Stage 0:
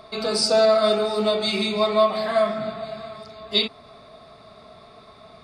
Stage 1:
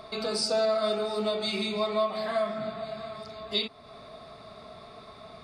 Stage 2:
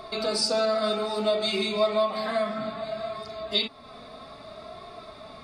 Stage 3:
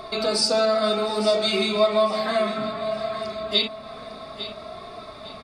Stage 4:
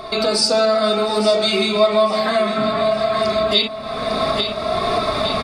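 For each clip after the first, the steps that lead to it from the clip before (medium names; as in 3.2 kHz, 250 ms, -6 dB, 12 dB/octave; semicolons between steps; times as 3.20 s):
compression 1.5:1, threshold -39 dBFS, peak gain reduction 9.5 dB
flange 0.62 Hz, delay 2.7 ms, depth 1.4 ms, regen +46%; trim +7.5 dB
feedback delay 852 ms, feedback 31%, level -12.5 dB; trim +4 dB
recorder AGC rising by 25 dB/s; trim +4.5 dB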